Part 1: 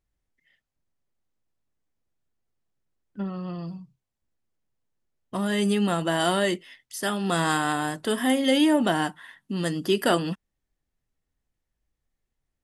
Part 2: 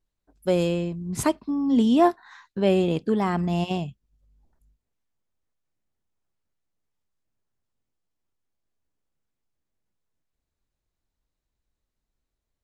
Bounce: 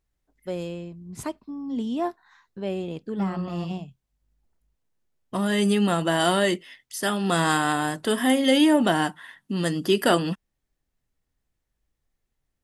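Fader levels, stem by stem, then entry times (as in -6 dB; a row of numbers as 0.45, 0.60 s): +2.0, -9.0 dB; 0.00, 0.00 s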